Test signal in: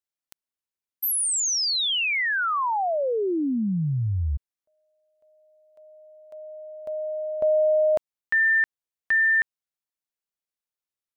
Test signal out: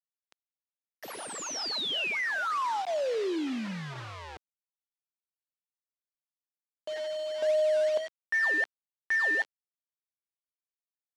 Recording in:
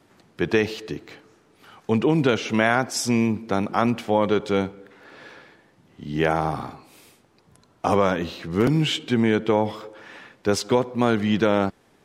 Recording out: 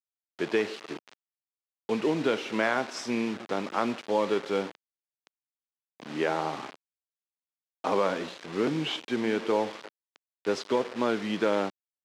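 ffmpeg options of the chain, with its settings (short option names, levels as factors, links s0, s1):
-filter_complex "[0:a]bandreject=f=730:w=12,asplit=2[s0][s1];[s1]acrusher=samples=16:mix=1:aa=0.000001:lfo=1:lforange=9.6:lforate=2.6,volume=0.282[s2];[s0][s2]amix=inputs=2:normalize=0,flanger=delay=6.3:depth=9.1:regen=-89:speed=0.19:shape=triangular,acrusher=bits=5:mix=0:aa=0.000001,highpass=280,lowpass=4600,volume=0.794"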